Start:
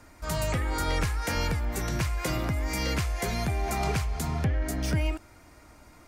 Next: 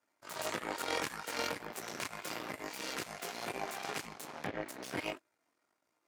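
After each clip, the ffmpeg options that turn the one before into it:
-af "flanger=delay=18:depth=3.9:speed=1.7,aeval=exprs='0.119*(cos(1*acos(clip(val(0)/0.119,-1,1)))-cos(1*PI/2))+0.0335*(cos(3*acos(clip(val(0)/0.119,-1,1)))-cos(3*PI/2))+0.00473*(cos(6*acos(clip(val(0)/0.119,-1,1)))-cos(6*PI/2))+0.00376*(cos(7*acos(clip(val(0)/0.119,-1,1)))-cos(7*PI/2))+0.00841*(cos(8*acos(clip(val(0)/0.119,-1,1)))-cos(8*PI/2))':c=same,highpass=310,volume=1.19"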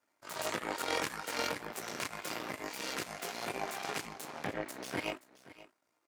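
-af "aecho=1:1:525:0.126,volume=1.19"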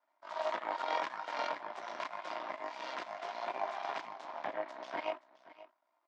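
-af "highpass=360,equalizer=f=450:t=q:w=4:g=-10,equalizer=f=650:t=q:w=4:g=10,equalizer=f=980:t=q:w=4:g=10,equalizer=f=2600:t=q:w=4:g=-4,equalizer=f=4400:t=q:w=4:g=-4,lowpass=f=4500:w=0.5412,lowpass=f=4500:w=1.3066,volume=0.668"

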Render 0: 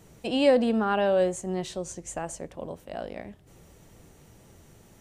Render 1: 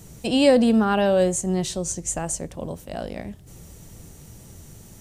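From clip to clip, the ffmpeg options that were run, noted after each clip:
-af "bass=f=250:g=8,treble=f=4000:g=10,volume=1.41"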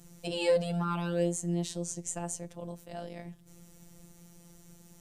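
-af "afftfilt=real='hypot(re,im)*cos(PI*b)':imag='0':win_size=1024:overlap=0.75,volume=0.473"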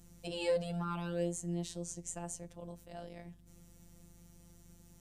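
-af "aeval=exprs='val(0)+0.00178*(sin(2*PI*50*n/s)+sin(2*PI*2*50*n/s)/2+sin(2*PI*3*50*n/s)/3+sin(2*PI*4*50*n/s)/4+sin(2*PI*5*50*n/s)/5)':c=same,volume=0.501"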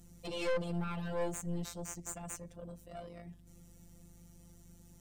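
-af "aeval=exprs='(tanh(70.8*val(0)+0.8)-tanh(0.8))/70.8':c=same,volume=2.24"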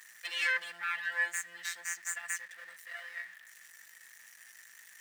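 -af "aeval=exprs='val(0)+0.5*0.00266*sgn(val(0))':c=same,highpass=f=1800:t=q:w=15,volume=1.58"

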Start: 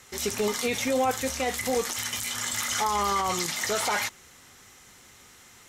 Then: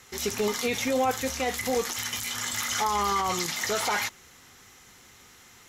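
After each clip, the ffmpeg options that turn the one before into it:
-af "equalizer=f=8600:w=5.8:g=-9,bandreject=f=590:w=12"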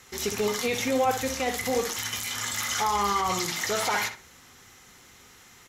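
-filter_complex "[0:a]asplit=2[s0][s1];[s1]adelay=64,lowpass=f=2300:p=1,volume=0.447,asplit=2[s2][s3];[s3]adelay=64,lowpass=f=2300:p=1,volume=0.28,asplit=2[s4][s5];[s5]adelay=64,lowpass=f=2300:p=1,volume=0.28[s6];[s0][s2][s4][s6]amix=inputs=4:normalize=0"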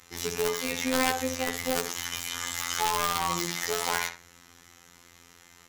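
-af "aeval=exprs='(mod(7.94*val(0)+1,2)-1)/7.94':c=same,afftfilt=real='hypot(re,im)*cos(PI*b)':imag='0':win_size=2048:overlap=0.75,volume=1.12"

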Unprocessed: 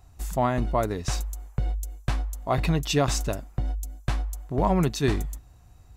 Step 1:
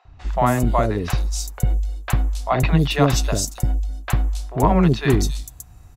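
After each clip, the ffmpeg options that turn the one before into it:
-filter_complex "[0:a]acrossover=split=540|4100[s0][s1][s2];[s0]adelay=50[s3];[s2]adelay=270[s4];[s3][s1][s4]amix=inputs=3:normalize=0,volume=2.37"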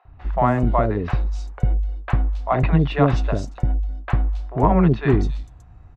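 -af "lowpass=2000"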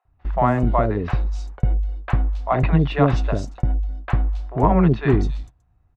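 -af "agate=range=0.158:threshold=0.0178:ratio=16:detection=peak"

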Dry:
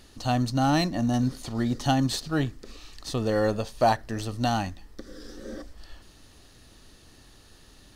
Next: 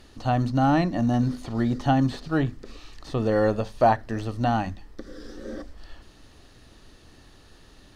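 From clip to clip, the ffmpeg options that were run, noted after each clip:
-filter_complex "[0:a]aemphasis=mode=reproduction:type=cd,acrossover=split=2700[s0][s1];[s1]acompressor=threshold=0.00398:ratio=4:attack=1:release=60[s2];[s0][s2]amix=inputs=2:normalize=0,bandreject=f=50:t=h:w=6,bandreject=f=100:t=h:w=6,bandreject=f=150:t=h:w=6,bandreject=f=200:t=h:w=6,bandreject=f=250:t=h:w=6,volume=1.33"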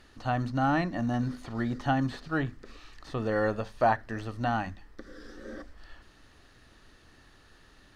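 -af "equalizer=f=1600:w=1.1:g=7.5,volume=0.447"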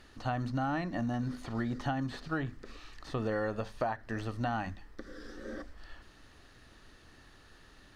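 -af "acompressor=threshold=0.0355:ratio=12"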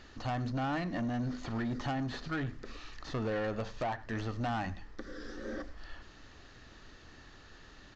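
-af "aresample=16000,asoftclip=type=tanh:threshold=0.0237,aresample=44100,aecho=1:1:99:0.1,volume=1.41"

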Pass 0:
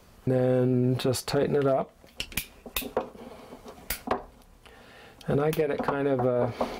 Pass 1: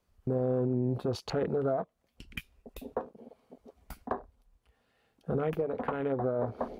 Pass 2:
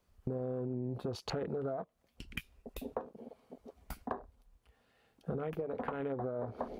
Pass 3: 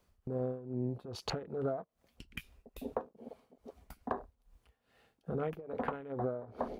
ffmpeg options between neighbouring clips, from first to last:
-af "afwtdn=0.0178,volume=0.531"
-af "acompressor=threshold=0.0178:ratio=6,volume=1.12"
-af "tremolo=f=2.4:d=0.82,volume=1.5"

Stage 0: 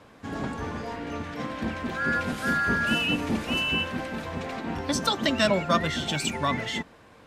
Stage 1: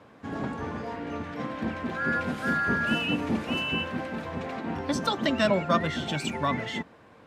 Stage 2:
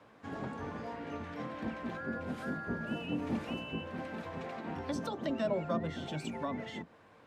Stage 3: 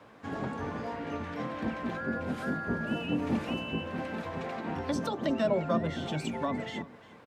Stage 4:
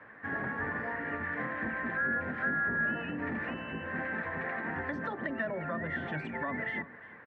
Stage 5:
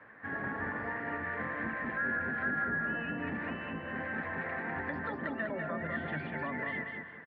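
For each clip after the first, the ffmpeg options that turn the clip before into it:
-af "highpass=85,highshelf=f=3400:g=-9.5"
-filter_complex "[0:a]acrossover=split=420|750[s0][s1][s2];[s0]flanger=delay=17:depth=6.7:speed=1.1[s3];[s2]acompressor=threshold=0.01:ratio=6[s4];[s3][s1][s4]amix=inputs=3:normalize=0,volume=0.562"
-af "aecho=1:1:351:0.106,volume=1.78"
-af "alimiter=level_in=1.19:limit=0.0631:level=0:latency=1:release=70,volume=0.841,lowpass=f=1800:t=q:w=8.7,volume=0.668"
-af "aresample=11025,aresample=44100,aecho=1:1:198|396|594|792:0.596|0.185|0.0572|0.0177,volume=0.75"

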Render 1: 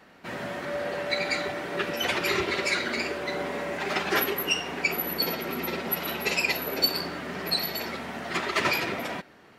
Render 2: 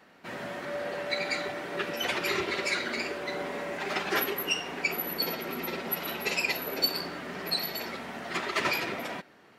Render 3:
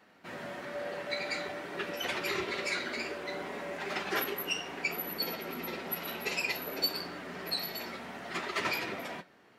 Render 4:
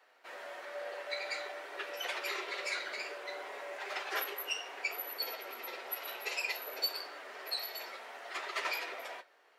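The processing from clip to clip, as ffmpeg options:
-af "lowshelf=f=69:g=-11.5,volume=0.708"
-af "flanger=delay=9.4:depth=7.6:regen=-53:speed=0.57:shape=sinusoidal"
-af "highpass=f=460:w=0.5412,highpass=f=460:w=1.3066,volume=0.708"

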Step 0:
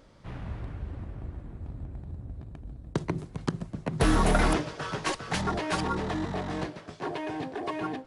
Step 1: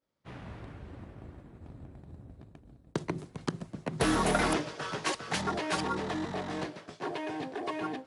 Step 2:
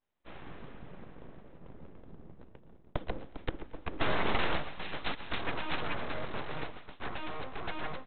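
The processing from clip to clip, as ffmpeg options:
-af "highpass=f=240:p=1,equalizer=f=1000:t=o:w=2.1:g=-2,agate=range=0.0224:threshold=0.00501:ratio=3:detection=peak"
-af "aresample=8000,aeval=exprs='abs(val(0))':c=same,aresample=44100,aecho=1:1:114|228|342:0.112|0.046|0.0189"

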